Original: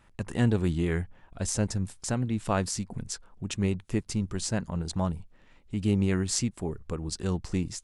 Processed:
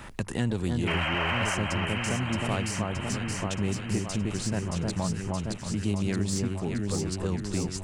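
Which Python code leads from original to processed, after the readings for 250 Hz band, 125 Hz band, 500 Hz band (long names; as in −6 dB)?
0.0 dB, 0.0 dB, +0.5 dB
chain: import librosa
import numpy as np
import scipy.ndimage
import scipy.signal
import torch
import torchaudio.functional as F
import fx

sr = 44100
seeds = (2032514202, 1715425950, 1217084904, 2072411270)

p1 = fx.diode_clip(x, sr, knee_db=-13.5)
p2 = fx.spec_paint(p1, sr, seeds[0], shape='noise', start_s=0.87, length_s=0.68, low_hz=520.0, high_hz=3200.0, level_db=-27.0)
p3 = fx.echo_alternate(p2, sr, ms=311, hz=1500.0, feedback_pct=78, wet_db=-3)
p4 = np.clip(10.0 ** (24.0 / 20.0) * p3, -1.0, 1.0) / 10.0 ** (24.0 / 20.0)
p5 = p3 + (p4 * librosa.db_to_amplitude(-10.0))
p6 = fx.band_squash(p5, sr, depth_pct=70)
y = p6 * librosa.db_to_amplitude(-4.5)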